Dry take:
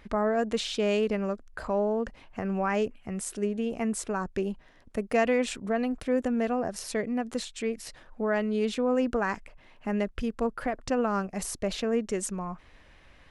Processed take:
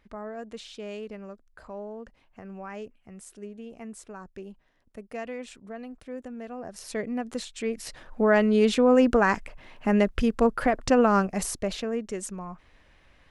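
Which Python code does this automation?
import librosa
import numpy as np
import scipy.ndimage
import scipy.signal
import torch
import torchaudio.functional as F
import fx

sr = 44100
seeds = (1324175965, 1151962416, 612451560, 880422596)

y = fx.gain(x, sr, db=fx.line((6.47, -11.5), (7.0, -1.0), (7.51, -1.0), (8.21, 7.0), (11.19, 7.0), (11.95, -3.0)))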